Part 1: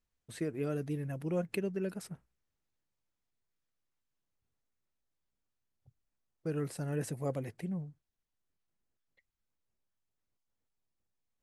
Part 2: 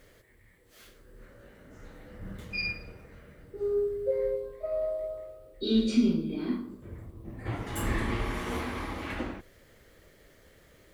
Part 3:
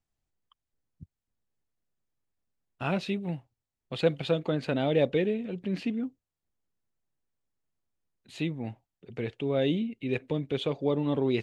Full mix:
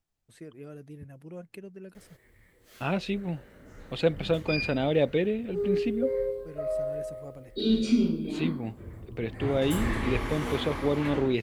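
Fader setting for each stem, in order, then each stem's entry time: -9.0 dB, +0.5 dB, +0.5 dB; 0.00 s, 1.95 s, 0.00 s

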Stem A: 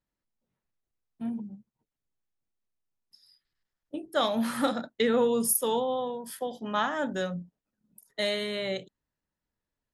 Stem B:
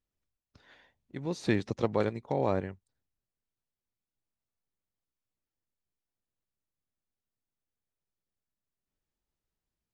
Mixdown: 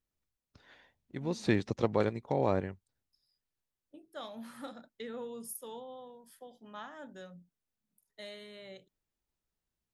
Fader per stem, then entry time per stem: -17.5 dB, -0.5 dB; 0.00 s, 0.00 s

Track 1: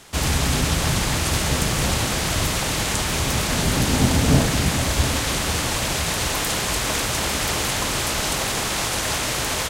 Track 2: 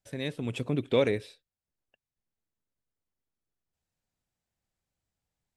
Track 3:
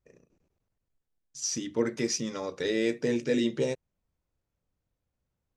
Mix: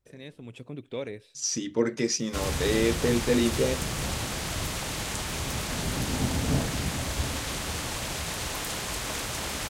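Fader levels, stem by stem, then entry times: -9.5 dB, -10.0 dB, +2.5 dB; 2.20 s, 0.00 s, 0.00 s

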